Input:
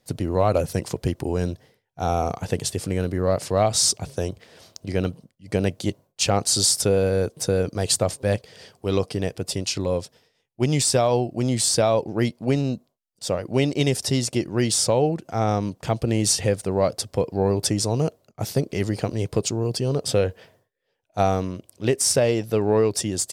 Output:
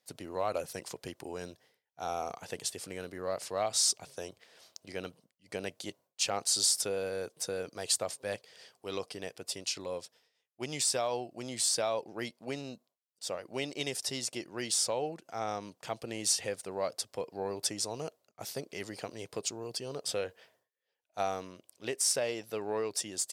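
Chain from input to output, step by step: HPF 860 Hz 6 dB/oct; gain -7.5 dB

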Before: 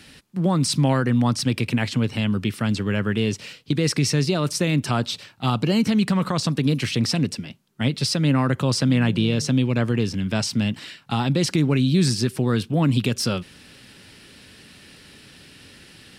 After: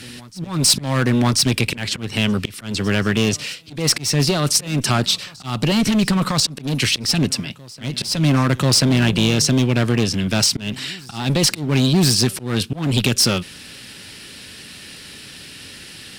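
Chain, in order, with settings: one-sided clip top -22.5 dBFS, bottom -13.5 dBFS; auto swell 0.217 s; high shelf 2200 Hz +7.5 dB; reverse echo 1.038 s -24 dB; gain +5 dB

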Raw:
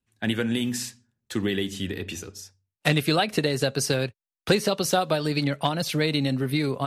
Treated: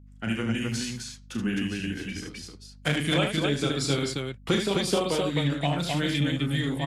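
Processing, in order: formant shift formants -3 st; loudspeakers at several distances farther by 12 m -6 dB, 26 m -6 dB, 89 m -3 dB; hum 50 Hz, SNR 22 dB; gain -4.5 dB

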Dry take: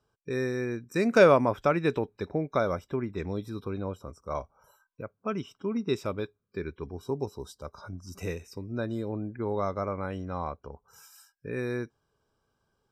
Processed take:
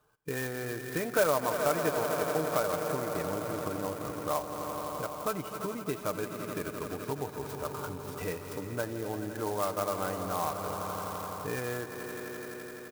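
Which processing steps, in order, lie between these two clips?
swelling echo 85 ms, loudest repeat 5, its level -14.5 dB; dynamic EQ 700 Hz, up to +4 dB, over -42 dBFS, Q 2.1; compressor 2.5:1, threshold -37 dBFS, peak gain reduction 16.5 dB; bell 1300 Hz +8.5 dB 2.4 oct; comb 6.6 ms, depth 48%; clock jitter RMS 0.055 ms

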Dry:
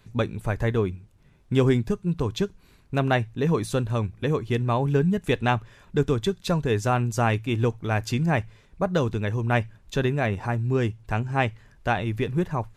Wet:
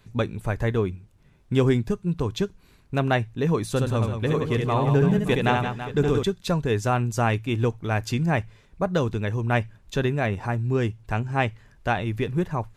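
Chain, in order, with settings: 3.69–6.23 reverse bouncing-ball echo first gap 70 ms, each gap 1.5×, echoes 5

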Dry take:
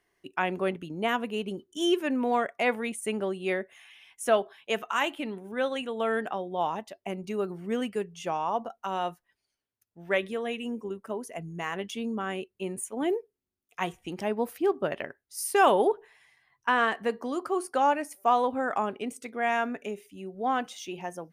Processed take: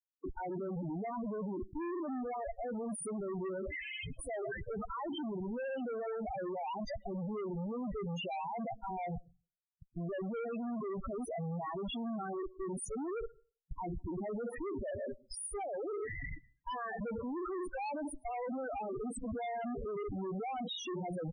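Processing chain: spectral contrast raised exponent 1.8; bell 850 Hz +3 dB 1.9 oct; reverse; compressor 10:1, threshold -35 dBFS, peak gain reduction 21 dB; reverse; limiter -37 dBFS, peak gain reduction 11 dB; Schmitt trigger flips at -58 dBFS; downsampling 22050 Hz; on a send at -22.5 dB: reverb RT60 0.35 s, pre-delay 0.103 s; on the sum: loudest bins only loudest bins 8; gain +8 dB

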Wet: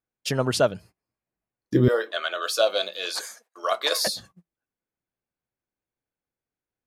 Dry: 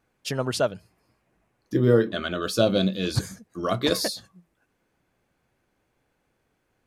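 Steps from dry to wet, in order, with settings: gate -49 dBFS, range -24 dB; 1.88–4.07 HPF 570 Hz 24 dB/oct; gain +3 dB

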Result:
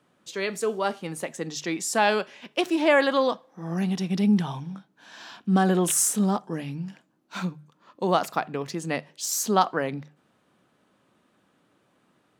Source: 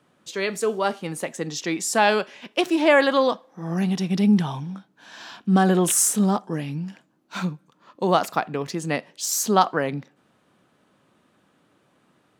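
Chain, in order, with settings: notches 50/100/150 Hz; gain -3 dB

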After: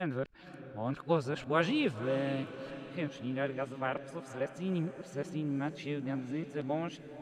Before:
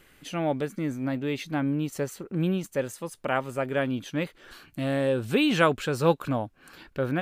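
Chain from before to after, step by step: whole clip reversed; air absorption 73 m; diffused feedback echo 0.521 s, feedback 52%, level -12.5 dB; gain -7.5 dB

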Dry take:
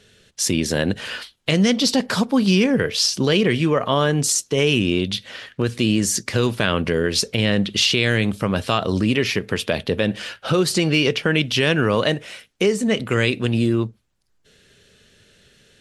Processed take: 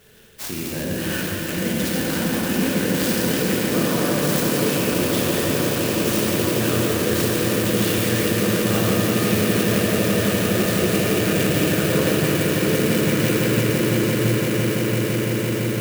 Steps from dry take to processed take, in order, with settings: reverse; compressor 6:1, threshold -28 dBFS, peak gain reduction 14.5 dB; reverse; swelling echo 0.169 s, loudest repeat 8, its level -8.5 dB; reverb RT60 4.8 s, pre-delay 8 ms, DRR -6 dB; clock jitter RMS 0.051 ms

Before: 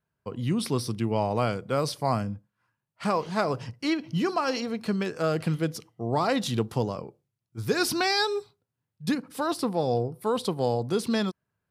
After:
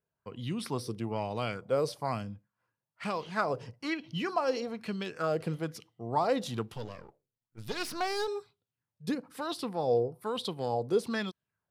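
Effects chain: 6.73–8.28 half-wave gain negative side -12 dB; LFO bell 1.1 Hz 430–3600 Hz +11 dB; gain -8.5 dB

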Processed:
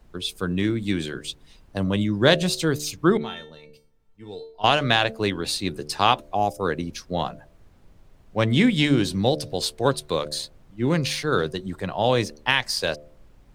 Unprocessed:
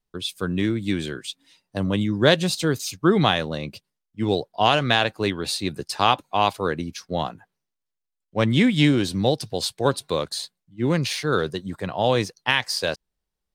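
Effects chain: added noise brown -50 dBFS; 3.17–4.64 resonator 450 Hz, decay 0.31 s, harmonics all, mix 90%; 6.34–6.6 spectral gain 840–4900 Hz -18 dB; de-hum 74.3 Hz, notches 9

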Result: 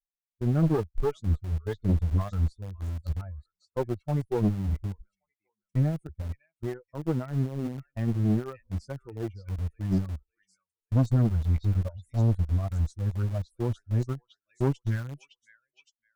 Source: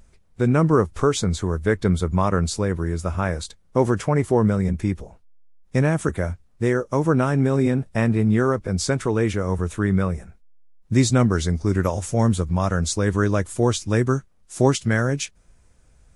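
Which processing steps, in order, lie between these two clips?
per-bin expansion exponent 3; gate -44 dBFS, range -19 dB; tilt -4.5 dB/oct; on a send: delay with a stepping band-pass 0.563 s, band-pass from 3200 Hz, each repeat 0.7 oct, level -1 dB; on the sum: tube stage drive 12 dB, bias 0.7; in parallel at -6.5 dB: sample gate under -24 dBFS; on the sum: gain -9 dB

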